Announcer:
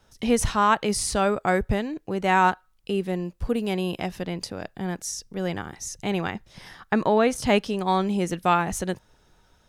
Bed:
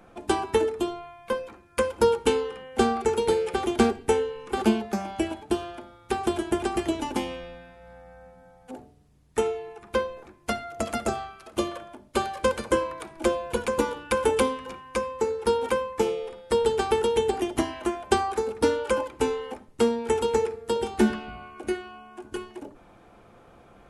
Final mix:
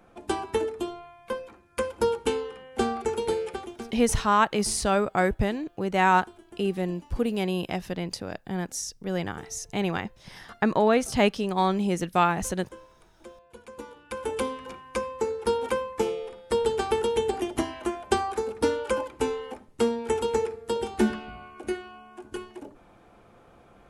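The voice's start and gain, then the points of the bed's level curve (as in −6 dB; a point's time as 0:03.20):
3.70 s, −1.0 dB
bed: 0:03.47 −4 dB
0:03.92 −23 dB
0:13.43 −23 dB
0:14.65 −2 dB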